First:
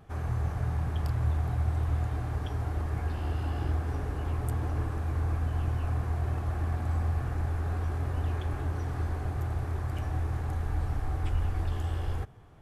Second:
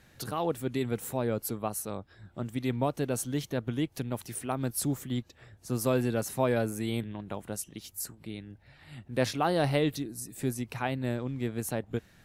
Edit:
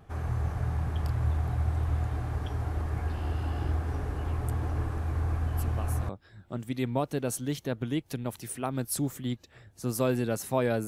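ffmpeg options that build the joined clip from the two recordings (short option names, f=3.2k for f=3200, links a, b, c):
-filter_complex "[1:a]asplit=2[a][b];[0:a]apad=whole_dur=10.87,atrim=end=10.87,atrim=end=6.092[c];[b]atrim=start=1.948:end=6.73[d];[a]atrim=start=1.38:end=1.95,asetpts=PTS-STARTPTS,volume=-9dB,afade=t=in:d=0.004:c=hsin,afade=t=out:st=0.566:d=0.004:c=hsin,adelay=5520[e];[c][d]acrossfade=d=0.004:c1=hsin:c2=hsin[f];[f][e]amix=inputs=2:normalize=0"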